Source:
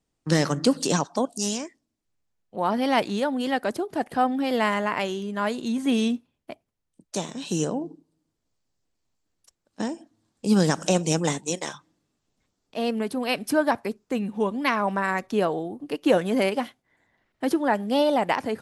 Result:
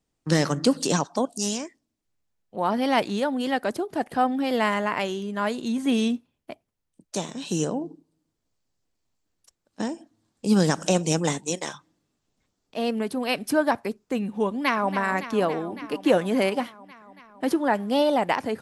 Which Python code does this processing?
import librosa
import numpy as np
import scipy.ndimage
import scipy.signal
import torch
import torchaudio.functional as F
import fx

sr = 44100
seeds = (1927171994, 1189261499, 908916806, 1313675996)

y = fx.echo_throw(x, sr, start_s=14.49, length_s=0.46, ms=280, feedback_pct=80, wet_db=-11.5)